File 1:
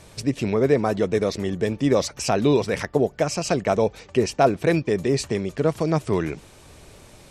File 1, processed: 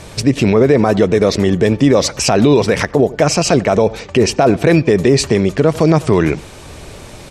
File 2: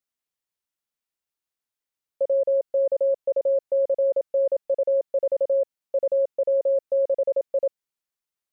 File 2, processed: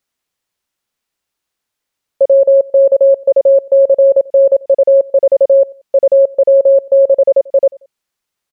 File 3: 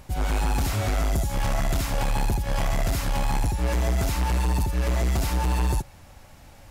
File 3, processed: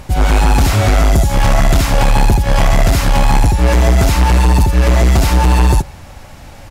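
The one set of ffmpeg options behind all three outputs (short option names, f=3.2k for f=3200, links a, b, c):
-filter_complex "[0:a]highshelf=f=9.5k:g=-6.5,asplit=2[a][b];[b]adelay=91,lowpass=f=3.1k:p=1,volume=-24dB,asplit=2[c][d];[d]adelay=91,lowpass=f=3.1k:p=1,volume=0.33[e];[a][c][e]amix=inputs=3:normalize=0,alimiter=level_in=14.5dB:limit=-1dB:release=50:level=0:latency=1,volume=-1dB"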